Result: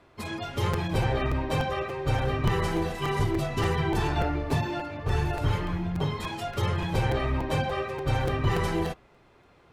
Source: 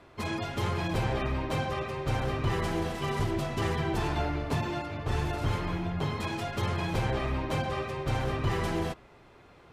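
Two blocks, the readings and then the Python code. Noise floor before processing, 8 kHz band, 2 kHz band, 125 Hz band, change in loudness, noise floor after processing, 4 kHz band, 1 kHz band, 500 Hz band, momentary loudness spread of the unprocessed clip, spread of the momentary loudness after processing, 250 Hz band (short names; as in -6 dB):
-55 dBFS, +1.5 dB, +2.5 dB, +3.5 dB, +3.0 dB, -58 dBFS, +2.5 dB, +2.5 dB, +3.0 dB, 3 LU, 4 LU, +2.5 dB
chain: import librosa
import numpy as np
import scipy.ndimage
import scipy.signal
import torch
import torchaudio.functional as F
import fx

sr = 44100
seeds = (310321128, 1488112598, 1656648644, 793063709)

y = fx.noise_reduce_blind(x, sr, reduce_db=7)
y = fx.buffer_crackle(y, sr, first_s=0.73, period_s=0.29, block=256, kind='repeat')
y = F.gain(torch.from_numpy(y), 4.0).numpy()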